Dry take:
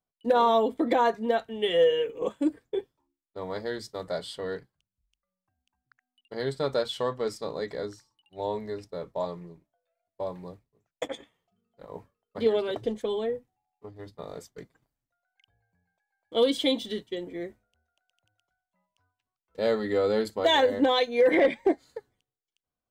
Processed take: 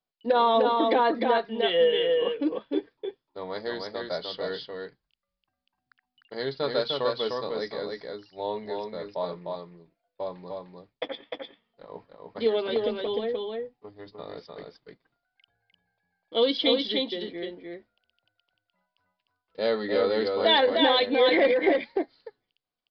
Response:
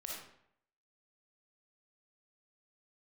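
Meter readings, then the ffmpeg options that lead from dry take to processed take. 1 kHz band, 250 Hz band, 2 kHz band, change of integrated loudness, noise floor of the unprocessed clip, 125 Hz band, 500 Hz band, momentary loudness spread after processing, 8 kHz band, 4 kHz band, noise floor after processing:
+2.0 dB, 0.0 dB, +3.0 dB, +1.5 dB, below −85 dBFS, −3.5 dB, +1.0 dB, 20 LU, below −15 dB, +5.0 dB, below −85 dBFS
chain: -filter_complex "[0:a]highshelf=frequency=3700:gain=7.5,aresample=11025,aresample=44100,equalizer=frequency=71:width=0.78:gain=-11.5,asplit=2[link_01][link_02];[link_02]aecho=0:1:302:0.668[link_03];[link_01][link_03]amix=inputs=2:normalize=0"

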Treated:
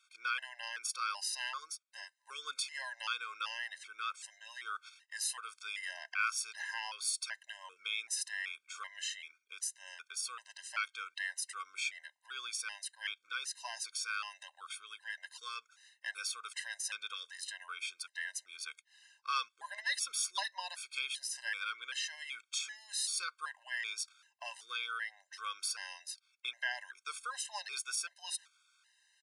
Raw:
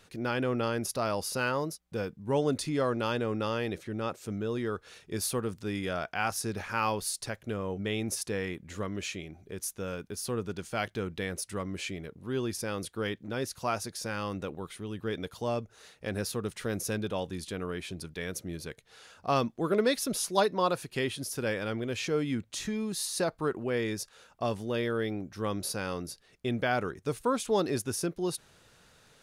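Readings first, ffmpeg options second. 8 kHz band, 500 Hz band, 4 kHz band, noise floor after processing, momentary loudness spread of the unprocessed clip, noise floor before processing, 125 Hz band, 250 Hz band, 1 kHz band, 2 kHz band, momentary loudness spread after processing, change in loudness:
−1.0 dB, −31.0 dB, 0.0 dB, −78 dBFS, 9 LU, −62 dBFS, below −40 dB, below −40 dB, −8.0 dB, −1.0 dB, 10 LU, −6.5 dB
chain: -filter_complex "[0:a]agate=range=-11dB:threshold=-47dB:ratio=16:detection=peak,highpass=frequency=1300:width=0.5412,highpass=frequency=1300:width=1.3066,asplit=2[link_01][link_02];[link_02]acompressor=threshold=-43dB:ratio=12,volume=-2dB[link_03];[link_01][link_03]amix=inputs=2:normalize=0,aresample=22050,aresample=44100,afftfilt=real='re*gt(sin(2*PI*1.3*pts/sr)*(1-2*mod(floor(b*sr/1024/530),2)),0)':imag='im*gt(sin(2*PI*1.3*pts/sr)*(1-2*mod(floor(b*sr/1024/530),2)),0)':win_size=1024:overlap=0.75,volume=1dB"

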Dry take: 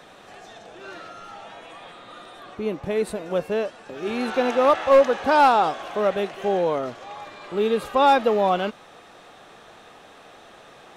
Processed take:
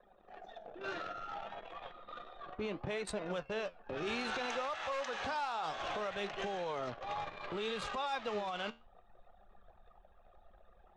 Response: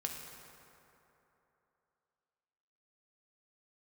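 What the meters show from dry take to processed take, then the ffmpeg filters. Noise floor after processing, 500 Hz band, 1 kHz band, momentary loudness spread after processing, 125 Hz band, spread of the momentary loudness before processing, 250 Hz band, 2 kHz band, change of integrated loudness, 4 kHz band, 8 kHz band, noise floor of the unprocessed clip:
−64 dBFS, −18.5 dB, −17.5 dB, 13 LU, −11.5 dB, 23 LU, −16.5 dB, −11.0 dB, −18.0 dB, −9.0 dB, can't be measured, −48 dBFS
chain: -filter_complex "[0:a]lowpass=frequency=7900:width=0.5412,lowpass=frequency=7900:width=1.3066,asubboost=boost=4.5:cutoff=110,acrossover=split=150|780[link_01][link_02][link_03];[link_01]acompressor=threshold=-49dB:ratio=4[link_04];[link_02]acompressor=threshold=-32dB:ratio=4[link_05];[link_04][link_05][link_03]amix=inputs=3:normalize=0,anlmdn=0.631,acompressor=threshold=-32dB:ratio=4,alimiter=level_in=5dB:limit=-24dB:level=0:latency=1:release=14,volume=-5dB,flanger=delay=4.8:depth=8.4:regen=76:speed=0.63:shape=sinusoidal,highshelf=frequency=3500:gain=6.5,volume=3dB"

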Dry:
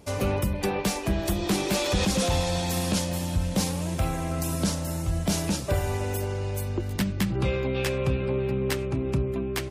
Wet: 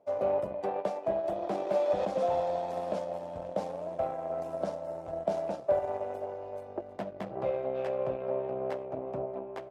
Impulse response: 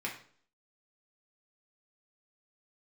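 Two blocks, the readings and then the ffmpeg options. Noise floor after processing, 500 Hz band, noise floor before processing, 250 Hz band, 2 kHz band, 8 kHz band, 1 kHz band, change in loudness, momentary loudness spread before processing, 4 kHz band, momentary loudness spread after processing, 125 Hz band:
−46 dBFS, 0.0 dB, −31 dBFS, −14.5 dB, −15.5 dB, below −25 dB, −1.0 dB, −6.0 dB, 4 LU, below −20 dB, 10 LU, −21.0 dB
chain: -filter_complex "[0:a]asplit=2[link_01][link_02];[1:a]atrim=start_sample=2205,asetrate=26901,aresample=44100[link_03];[link_02][link_03]afir=irnorm=-1:irlink=0,volume=-20dB[link_04];[link_01][link_04]amix=inputs=2:normalize=0,aeval=exprs='0.211*(cos(1*acos(clip(val(0)/0.211,-1,1)))-cos(1*PI/2))+0.0106*(cos(3*acos(clip(val(0)/0.211,-1,1)))-cos(3*PI/2))+0.015*(cos(7*acos(clip(val(0)/0.211,-1,1)))-cos(7*PI/2))':channel_layout=same,bandpass=frequency=630:width_type=q:width=5:csg=0,volume=7.5dB"

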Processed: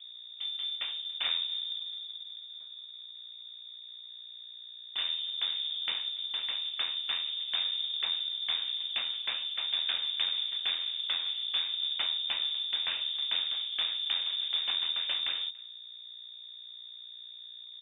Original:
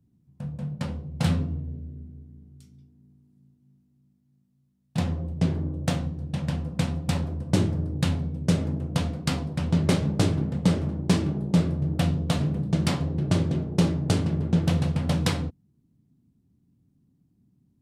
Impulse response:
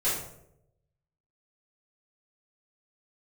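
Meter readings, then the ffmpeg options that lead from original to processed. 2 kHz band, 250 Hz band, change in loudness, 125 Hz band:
−1.5 dB, below −40 dB, −4.0 dB, below −40 dB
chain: -filter_complex "[0:a]aeval=exprs='val(0)+0.00708*(sin(2*PI*60*n/s)+sin(2*PI*2*60*n/s)/2+sin(2*PI*3*60*n/s)/3+sin(2*PI*4*60*n/s)/4+sin(2*PI*5*60*n/s)/5)':channel_layout=same,equalizer=frequency=64:width_type=o:width=2:gain=-7.5,acrossover=split=130|870[link_01][link_02][link_03];[link_02]acompressor=threshold=-38dB:ratio=12[link_04];[link_03]alimiter=limit=-20dB:level=0:latency=1:release=316[link_05];[link_01][link_04][link_05]amix=inputs=3:normalize=0,acrossover=split=2700[link_06][link_07];[link_07]acompressor=threshold=-51dB:ratio=4:attack=1:release=60[link_08];[link_06][link_08]amix=inputs=2:normalize=0,asplit=2[link_09][link_10];[link_10]acrusher=bits=3:mode=log:mix=0:aa=0.000001,volume=-7dB[link_11];[link_09][link_11]amix=inputs=2:normalize=0,aeval=exprs='clip(val(0),-1,0.0211)':channel_layout=same,asplit=2[link_12][link_13];[link_13]adelay=285.7,volume=-24dB,highshelf=frequency=4000:gain=-6.43[link_14];[link_12][link_14]amix=inputs=2:normalize=0,lowpass=frequency=3100:width_type=q:width=0.5098,lowpass=frequency=3100:width_type=q:width=0.6013,lowpass=frequency=3100:width_type=q:width=0.9,lowpass=frequency=3100:width_type=q:width=2.563,afreqshift=-3700,volume=-1dB"

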